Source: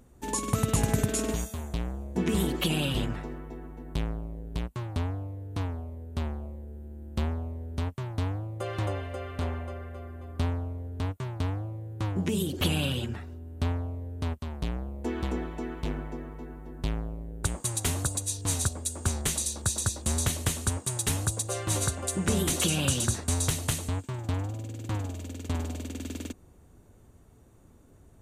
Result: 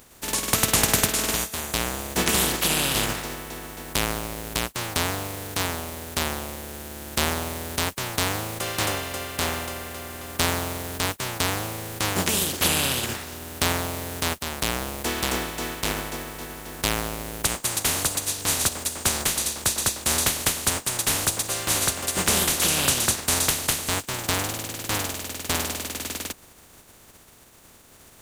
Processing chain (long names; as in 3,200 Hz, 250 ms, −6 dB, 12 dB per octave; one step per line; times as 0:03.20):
compressing power law on the bin magnitudes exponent 0.35
level +4.5 dB